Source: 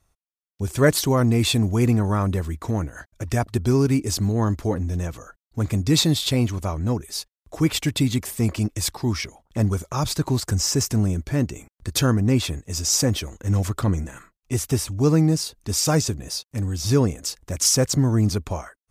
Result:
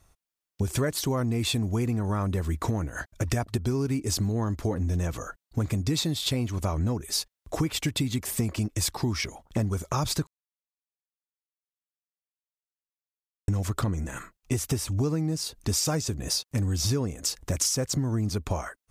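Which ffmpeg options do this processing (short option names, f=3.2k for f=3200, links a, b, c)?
-filter_complex "[0:a]asplit=3[a][b][c];[a]atrim=end=10.27,asetpts=PTS-STARTPTS,afade=t=out:st=10.266:d=0.004:c=hsin[d];[b]atrim=start=10.27:end=13.48,asetpts=PTS-STARTPTS,volume=0[e];[c]atrim=start=13.48,asetpts=PTS-STARTPTS,afade=t=in:d=0.004:c=hsin[f];[d][e][f]concat=n=3:v=0:a=1,acompressor=threshold=-29dB:ratio=12,volume=5.5dB"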